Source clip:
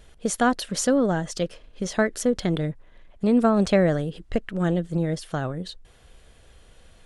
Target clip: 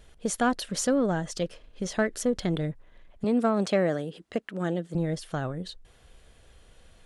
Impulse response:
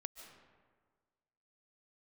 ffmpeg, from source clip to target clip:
-filter_complex "[0:a]asplit=2[a][b];[b]asoftclip=type=tanh:threshold=-16.5dB,volume=-6dB[c];[a][c]amix=inputs=2:normalize=0,asettb=1/sr,asplit=3[d][e][f];[d]atrim=end=3.244[g];[e]atrim=start=3.24:end=4.95,asetpts=PTS-STARTPTS,afade=t=in:d=0.004:c=qsin,afade=t=out:st=1.706:d=0.004:c=qsin,highpass=200[h];[f]atrim=start=4.946[i];[g][h]acrossfade=d=0.004:c1=hsin:c2=qsin[j];[j][i]acrossfade=d=0.004:c1=qsin:c2=hsin,volume=-6.5dB"

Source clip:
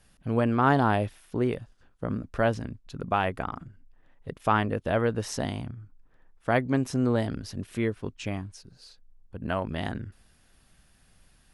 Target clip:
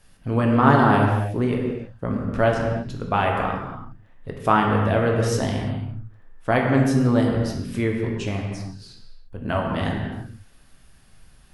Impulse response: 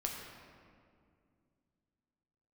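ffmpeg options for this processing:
-filter_complex "[1:a]atrim=start_sample=2205,afade=t=out:st=0.37:d=0.01,atrim=end_sample=16758,asetrate=41454,aresample=44100[a];[0:a][a]afir=irnorm=-1:irlink=0,volume=4.5dB"

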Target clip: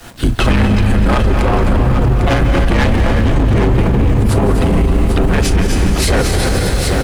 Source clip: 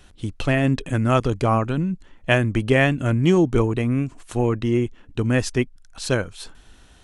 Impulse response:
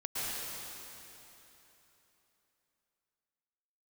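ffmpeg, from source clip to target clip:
-filter_complex "[0:a]highpass=f=110:p=1,agate=range=-7dB:threshold=-54dB:ratio=16:detection=peak,equalizer=f=5k:w=0.51:g=-6.5,aecho=1:1:6.8:0.6,asplit=2[a][b];[b]acompressor=threshold=-28dB:ratio=6,volume=2.5dB[c];[a][c]amix=inputs=2:normalize=0,acrusher=bits=8:mix=0:aa=0.000001,afreqshift=-63,asplit=3[d][e][f];[e]asetrate=22050,aresample=44100,atempo=2,volume=-3dB[g];[f]asetrate=55563,aresample=44100,atempo=0.793701,volume=-8dB[h];[d][g][h]amix=inputs=3:normalize=0,asoftclip=type=tanh:threshold=-18dB,aecho=1:1:258|801:0.355|0.355,asplit=2[i][j];[1:a]atrim=start_sample=2205,lowshelf=f=180:g=8.5,adelay=39[k];[j][k]afir=irnorm=-1:irlink=0,volume=-9.5dB[l];[i][l]amix=inputs=2:normalize=0,alimiter=level_in=17.5dB:limit=-1dB:release=50:level=0:latency=1,volume=-4dB"

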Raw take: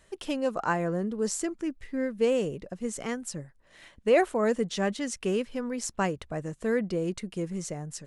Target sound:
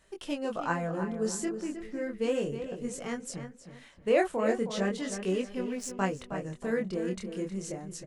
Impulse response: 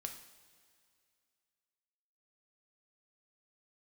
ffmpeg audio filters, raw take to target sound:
-filter_complex "[0:a]asettb=1/sr,asplit=3[a][b][c];[a]atrim=end=5.604[d];[b]atrim=start=5.6:end=6,asetpts=PTS-STARTPTS,afade=t=in:d=0.004:c=qsin,afade=t=out:st=0.396:d=0.004:c=qsin,aeval=exprs='sgn(val(0))*max(abs(val(0))-0.00531,0)':c=same[e];[c]atrim=start=5.996[f];[d][e]acrossfade=d=0.004:c1=hsin:c2=qsin[g];[g][f]acrossfade=d=0.004:c1=qsin:c2=hsin,flanger=delay=20:depth=7.3:speed=0.35,asplit=2[h][i];[i]adelay=315,lowpass=f=3.5k:p=1,volume=-9dB,asplit=2[j][k];[k]adelay=315,lowpass=f=3.5k:p=1,volume=0.32,asplit=2[l][m];[m]adelay=315,lowpass=f=3.5k:p=1,volume=0.32,asplit=2[n][o];[o]adelay=315,lowpass=f=3.5k:p=1,volume=0.32[p];[h][j][l][n][p]amix=inputs=5:normalize=0"

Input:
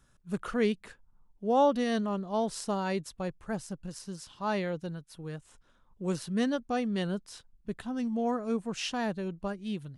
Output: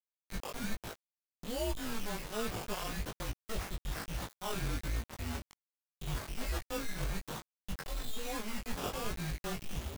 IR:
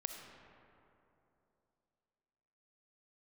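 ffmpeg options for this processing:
-af "highpass=88,equalizer=f=540:w=5.7:g=-10.5,areverse,acompressor=threshold=-40dB:ratio=8,areverse,acrusher=samples=16:mix=1:aa=0.000001:lfo=1:lforange=9.6:lforate=0.47,afreqshift=-220,acrusher=bits=7:mix=0:aa=0.000001,flanger=delay=17.5:depth=4.2:speed=1.2,volume=9dB"

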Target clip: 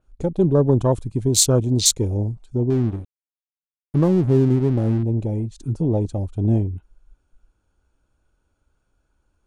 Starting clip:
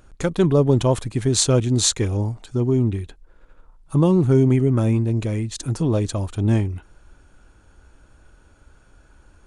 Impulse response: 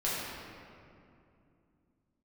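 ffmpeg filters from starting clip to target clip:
-filter_complex "[0:a]afwtdn=0.0501,equalizer=f=1.8k:t=o:w=0.42:g=-6,asettb=1/sr,asplit=3[a][b][c];[a]atrim=end=2.704[d];[b]atrim=start=2.7:end=5.03,asetpts=PTS-STARTPTS,afade=t=in:d=0.004:c=qsin,afade=t=out:st=2.326:d=0.004:c=qsin,aeval=exprs='sgn(val(0))*max(abs(val(0))-0.0188,0)':c=same[e];[c]atrim=start=5.026[f];[d][e]acrossfade=d=0.004:c1=hsin:c2=qsin[g];[g][f]acrossfade=d=0.004:c1=qsin:c2=hsin,adynamicequalizer=threshold=0.0141:dfrequency=5000:dqfactor=0.7:tfrequency=5000:tqfactor=0.7:attack=5:release=100:ratio=0.375:range=3:mode=boostabove:tftype=highshelf"

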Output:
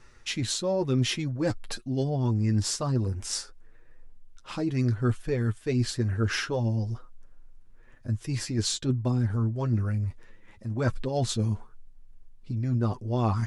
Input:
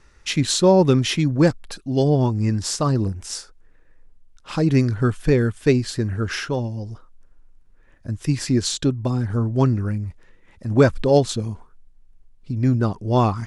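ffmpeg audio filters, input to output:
-af "areverse,acompressor=threshold=-24dB:ratio=6,areverse,flanger=delay=8:depth=1.6:regen=23:speed=1:shape=sinusoidal,volume=3dB"

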